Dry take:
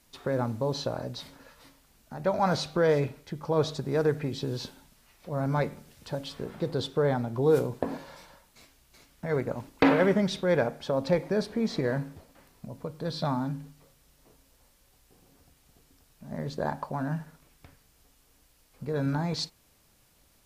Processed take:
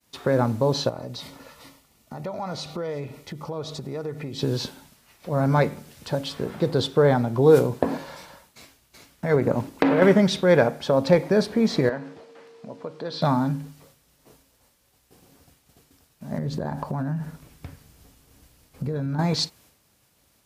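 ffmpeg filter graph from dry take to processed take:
-filter_complex "[0:a]asettb=1/sr,asplit=3[s0][s1][s2];[s0]atrim=end=0.894[s3];[s1]atrim=start=0.89:end=4.39,asetpts=PTS-STARTPTS,afade=t=in:d=0.004:c=qsin,afade=t=out:st=3.496:d=0.004:c=qsin,asuperstop=centerf=1600:order=8:qfactor=7.3,acompressor=threshold=0.01:ratio=3:attack=3.2:release=140:knee=1:detection=peak[s4];[s2]atrim=start=4.386[s5];[s3][s4]acrossfade=d=0.004:c1=hsin:c2=qsin[s6];[s6][s5]acrossfade=d=0.004:c1=qsin:c2=hsin,asettb=1/sr,asplit=3[s7][s8][s9];[s7]atrim=end=9.344[s10];[s8]atrim=start=9.34:end=10.02,asetpts=PTS-STARTPTS,afade=t=in:d=0.004:c=qsin,afade=t=out:st=0.676:d=0.004:c=qsin,equalizer=f=260:w=0.33:g=5.5,acompressor=threshold=0.0794:ratio=16:attack=3.2:release=140:knee=1:detection=peak[s11];[s9]atrim=start=10.016[s12];[s10][s11]acrossfade=d=0.004:c1=hsin:c2=qsin[s13];[s13][s12]acrossfade=d=0.004:c1=qsin:c2=hsin,asettb=1/sr,asplit=3[s14][s15][s16];[s14]atrim=end=11.894[s17];[s15]atrim=start=11.89:end=13.22,asetpts=PTS-STARTPTS,afade=t=in:d=0.004:c=qsin,afade=t=out:st=1.326:d=0.004:c=qsin,acompressor=threshold=0.0178:ratio=2:attack=3.2:release=140:knee=1:detection=peak,aeval=exprs='val(0)+0.002*sin(2*PI*460*n/s)':c=same,highpass=270,lowpass=4900[s18];[s16]atrim=start=13.216[s19];[s17][s18]acrossfade=d=0.004:c1=hsin:c2=qsin[s20];[s20][s19]acrossfade=d=0.004:c1=qsin:c2=hsin,asettb=1/sr,asplit=3[s21][s22][s23];[s21]atrim=end=16.384[s24];[s22]atrim=start=16.38:end=19.19,asetpts=PTS-STARTPTS,afade=t=in:d=0.004:c=qsin,afade=t=out:st=2.806:d=0.004:c=qsin,lowshelf=f=290:g=10.5,acompressor=threshold=0.0282:ratio=12:attack=3.2:release=140:knee=1:detection=peak[s25];[s23]atrim=start=19.186[s26];[s24][s25]acrossfade=d=0.004:c1=hsin:c2=qsin[s27];[s27][s26]acrossfade=d=0.004:c1=qsin:c2=hsin,highpass=67,agate=range=0.0224:threshold=0.00126:ratio=3:detection=peak,volume=2.37"

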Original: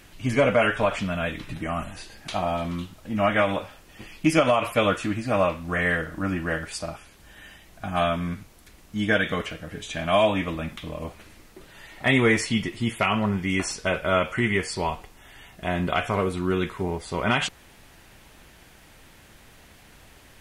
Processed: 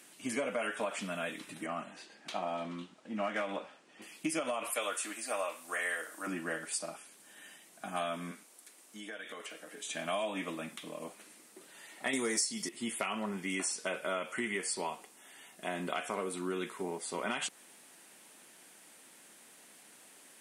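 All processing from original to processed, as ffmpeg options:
-filter_complex "[0:a]asettb=1/sr,asplit=3[s0][s1][s2];[s0]atrim=end=1.664[s3];[s1]atrim=start=1.66:end=4.02,asetpts=PTS-STARTPTS,afade=t=in:d=0.004:c=qsin,afade=t=out:st=2.356:d=0.004:c=qsin,lowpass=9300,adynamicsmooth=sensitivity=2.5:basefreq=4600[s4];[s2]atrim=start=4.016[s5];[s3][s4]acrossfade=d=0.004:c1=hsin:c2=qsin[s6];[s6][s5]acrossfade=d=0.004:c1=qsin:c2=hsin,asettb=1/sr,asplit=3[s7][s8][s9];[s7]atrim=end=4.704[s10];[s8]atrim=start=4.7:end=6.27,asetpts=PTS-STARTPTS,afade=t=in:d=0.004:c=qsin,afade=t=out:st=1.566:d=0.004:c=qsin,highpass=520,highshelf=f=7500:g=10[s11];[s9]atrim=start=6.266[s12];[s10][s11]acrossfade=d=0.004:c1=hsin:c2=qsin[s13];[s13][s12]acrossfade=d=0.004:c1=qsin:c2=hsin,asettb=1/sr,asplit=3[s14][s15][s16];[s14]atrim=end=8.314[s17];[s15]atrim=start=8.31:end=9.85,asetpts=PTS-STARTPTS,afade=t=in:d=0.004:c=qsin,afade=t=out:st=1.536:d=0.004:c=qsin,highpass=320,acompressor=threshold=0.02:ratio=5:attack=3.2:release=140:knee=1:detection=peak[s18];[s16]atrim=start=9.846[s19];[s17][s18]acrossfade=d=0.004:c1=hsin:c2=qsin[s20];[s20][s19]acrossfade=d=0.004:c1=qsin:c2=hsin,asettb=1/sr,asplit=3[s21][s22][s23];[s21]atrim=end=12.134[s24];[s22]atrim=start=12.13:end=12.69,asetpts=PTS-STARTPTS,afade=t=in:d=0.004:c=qsin,afade=t=out:st=0.556:d=0.004:c=qsin,highshelf=f=3800:t=q:w=3:g=9,acontrast=62[s25];[s23]atrim=start=12.686[s26];[s24][s25]acrossfade=d=0.004:c1=hsin:c2=qsin[s27];[s27][s26]acrossfade=d=0.004:c1=qsin:c2=hsin,highpass=f=210:w=0.5412,highpass=f=210:w=1.3066,equalizer=f=9000:t=o:w=0.85:g=13.5,acompressor=threshold=0.0708:ratio=6,volume=0.398"

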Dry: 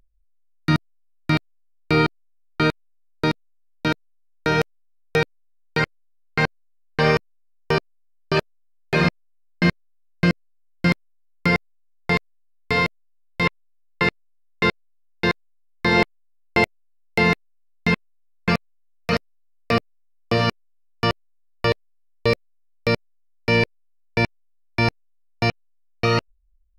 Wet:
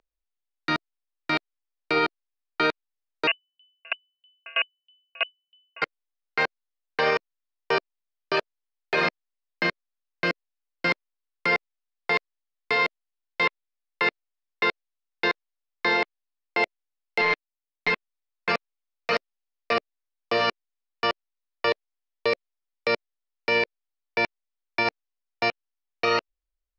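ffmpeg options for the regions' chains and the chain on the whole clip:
-filter_complex "[0:a]asettb=1/sr,asplit=3[s0][s1][s2];[s0]atrim=end=3.274[s3];[s1]atrim=start=3.27:end=5.82,asetpts=PTS-STARTPTS,afade=t=in:d=0.004:c=qsin,afade=t=out:st=2.546:d=0.004:c=qsin,acontrast=78,lowpass=f=2600:t=q:w=0.5098,lowpass=f=2600:t=q:w=0.6013,lowpass=f=2600:t=q:w=0.9,lowpass=f=2600:t=q:w=2.563,afreqshift=-3000,aeval=exprs='val(0)*pow(10,-37*if(lt(mod(3.1*n/s,1),2*abs(3.1)/1000),1-mod(3.1*n/s,1)/(2*abs(3.1)/1000),(mod(3.1*n/s,1)-2*abs(3.1)/1000)/(1-2*abs(3.1)/1000))/20)':c=same[s4];[s2]atrim=start=5.816[s5];[s3][s4]acrossfade=d=0.004:c1=hsin:c2=qsin[s6];[s6][s5]acrossfade=d=0.004:c1=qsin:c2=hsin,asettb=1/sr,asplit=3[s7][s8][s9];[s7]atrim=end=17.214[s10];[s8]atrim=start=17.21:end=17.9,asetpts=PTS-STARTPTS,afade=t=in:d=0.004:c=qsin,afade=t=out:st=0.686:d=0.004:c=qsin,aeval=exprs='if(lt(val(0),0),0.251*val(0),val(0))':c=same,lowpass=f=5500:w=0.5412,lowpass=f=5500:w=1.3066,aecho=1:1:6.7:0.92,atrim=end_sample=30429[s11];[s9]atrim=start=17.896[s12];[s10][s11]acrossfade=d=0.004:c1=hsin:c2=qsin[s13];[s13][s12]acrossfade=d=0.004:c1=qsin:c2=hsin,acrossover=split=340 6000:gain=0.0794 1 0.112[s14][s15][s16];[s14][s15][s16]amix=inputs=3:normalize=0,alimiter=limit=0.224:level=0:latency=1:release=25"

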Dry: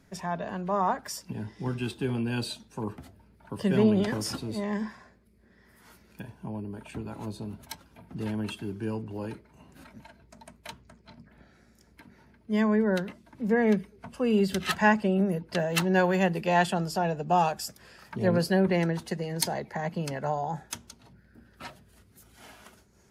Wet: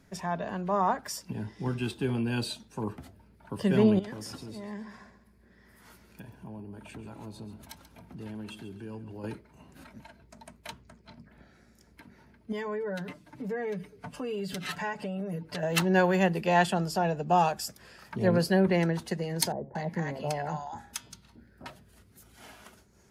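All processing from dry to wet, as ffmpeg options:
-filter_complex "[0:a]asettb=1/sr,asplit=3[s0][s1][s2];[s0]atrim=end=3.994[s3];[s1]atrim=start=3.99:end=9.24,asetpts=PTS-STARTPTS,afade=t=in:d=0.004:c=qsin,afade=t=out:st=5.246:d=0.004:c=qsin,acompressor=threshold=0.00562:ratio=2:attack=3.2:release=140:knee=1:detection=peak,aecho=1:1:136|272|408|544:0.224|0.0828|0.0306|0.0113,atrim=end_sample=231525[s4];[s2]atrim=start=9.236[s5];[s3][s4]acrossfade=d=0.004:c1=hsin:c2=qsin[s6];[s6][s5]acrossfade=d=0.004:c1=qsin:c2=hsin,asettb=1/sr,asplit=3[s7][s8][s9];[s7]atrim=end=12.524[s10];[s8]atrim=start=12.52:end=15.63,asetpts=PTS-STARTPTS,afade=t=in:d=0.004:c=qsin,afade=t=out:st=3.106:d=0.004:c=qsin,aecho=1:1:6.8:0.85,atrim=end_sample=137151,acompressor=threshold=0.02:ratio=3:attack=3.2:release=140:knee=1:detection=peak[s11];[s9]atrim=start=15.626[s12];[s10][s11]acrossfade=d=0.004:c1=hsin:c2=qsin[s13];[s13][s12]acrossfade=d=0.004:c1=qsin:c2=hsin,asettb=1/sr,asplit=3[s14][s15][s16];[s14]atrim=end=19.524[s17];[s15]atrim=start=19.52:end=21.66,asetpts=PTS-STARTPTS,afade=t=in:d=0.004:c=qsin,afade=t=out:st=2.136:d=0.004:c=qsin,bandreject=f=136:t=h:w=4,bandreject=f=272:t=h:w=4,bandreject=f=408:t=h:w=4,bandreject=f=544:t=h:w=4,bandreject=f=680:t=h:w=4,bandreject=f=816:t=h:w=4,bandreject=f=952:t=h:w=4,bandreject=f=1088:t=h:w=4,bandreject=f=1224:t=h:w=4,bandreject=f=1360:t=h:w=4,bandreject=f=1496:t=h:w=4,bandreject=f=1632:t=h:w=4,bandreject=f=1768:t=h:w=4,bandreject=f=1904:t=h:w=4,bandreject=f=2040:t=h:w=4,bandreject=f=2176:t=h:w=4,bandreject=f=2312:t=h:w=4,bandreject=f=2448:t=h:w=4,bandreject=f=2584:t=h:w=4,bandreject=f=2720:t=h:w=4,bandreject=f=2856:t=h:w=4,bandreject=f=2992:t=h:w=4,bandreject=f=3128:t=h:w=4,bandreject=f=3264:t=h:w=4,bandreject=f=3400:t=h:w=4,bandreject=f=3536:t=h:w=4,bandreject=f=3672:t=h:w=4,bandreject=f=3808:t=h:w=4,bandreject=f=3944:t=h:w=4,bandreject=f=4080:t=h:w=4,bandreject=f=4216:t=h:w=4,bandreject=f=4352:t=h:w=4,bandreject=f=4488:t=h:w=4,bandreject=f=4624:t=h:w=4,bandreject=f=4760:t=h:w=4,bandreject=f=4896:t=h:w=4,bandreject=f=5032:t=h:w=4,acrossover=split=830[s18][s19];[s19]adelay=230[s20];[s18][s20]amix=inputs=2:normalize=0,atrim=end_sample=94374[s21];[s16]atrim=start=21.656[s22];[s17][s21]acrossfade=d=0.004:c1=hsin:c2=qsin[s23];[s23][s22]acrossfade=d=0.004:c1=qsin:c2=hsin"

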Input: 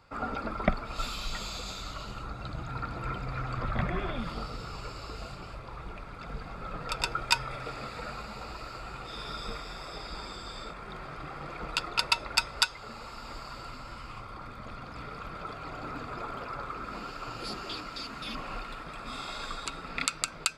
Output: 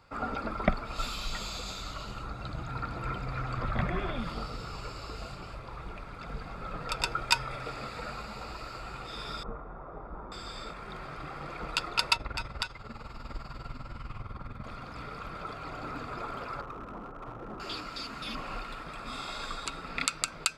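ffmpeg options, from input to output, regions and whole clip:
-filter_complex "[0:a]asettb=1/sr,asplit=3[s0][s1][s2];[s0]atrim=end=9.434[s3];[s1]atrim=start=9.43:end=10.32,asetpts=PTS-STARTPTS,afade=t=in:d=0.004:c=qsin,afade=t=out:st=0.886:d=0.004:c=qsin,lowpass=f=1200:w=0.5412,lowpass=f=1200:w=1.3066,aemphasis=mode=production:type=50fm[s4];[s2]atrim=start=10.316[s5];[s3][s4]acrossfade=d=0.004:c1=hsin:c2=qsin[s6];[s6][s5]acrossfade=d=0.004:c1=qsin:c2=hsin,asettb=1/sr,asplit=3[s7][s8][s9];[s7]atrim=end=12.164[s10];[s8]atrim=start=12.16:end=14.64,asetpts=PTS-STARTPTS,afade=t=in:d=0.004:c=qsin,afade=t=out:st=2.476:d=0.004:c=qsin,bass=f=250:g=9,treble=f=4000:g=-7,tremolo=f=20:d=0.72[s11];[s9]atrim=start=14.636[s12];[s10][s11]acrossfade=d=0.004:c1=hsin:c2=qsin[s13];[s13][s12]acrossfade=d=0.004:c1=qsin:c2=hsin,asettb=1/sr,asplit=3[s14][s15][s16];[s14]atrim=end=16.614[s17];[s15]atrim=start=16.61:end=17.6,asetpts=PTS-STARTPTS,afade=t=in:d=0.004:c=qsin,afade=t=out:st=0.986:d=0.004:c=qsin,lowpass=f=1200:w=0.5412,lowpass=f=1200:w=1.3066,aeval=exprs='clip(val(0),-1,0.01)':c=same[s18];[s16]atrim=start=17.596[s19];[s17][s18]acrossfade=d=0.004:c1=hsin:c2=qsin[s20];[s20][s19]acrossfade=d=0.004:c1=qsin:c2=hsin"

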